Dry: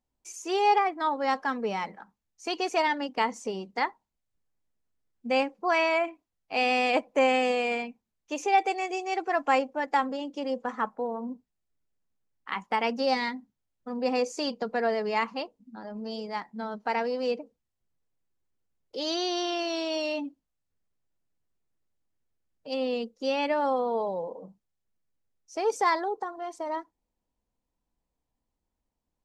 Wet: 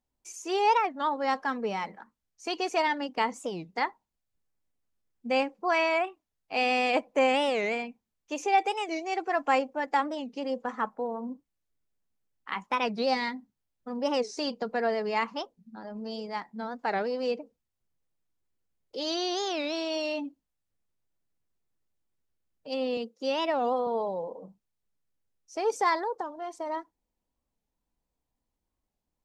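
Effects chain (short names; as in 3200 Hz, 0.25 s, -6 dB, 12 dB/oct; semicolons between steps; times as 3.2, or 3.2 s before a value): 22.97–23.87 HPF 190 Hz; record warp 45 rpm, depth 250 cents; gain -1 dB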